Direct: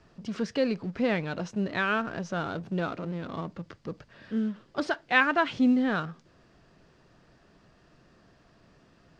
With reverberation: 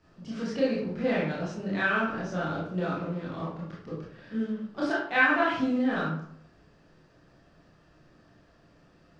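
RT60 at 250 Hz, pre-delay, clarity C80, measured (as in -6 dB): 0.70 s, 20 ms, 6.0 dB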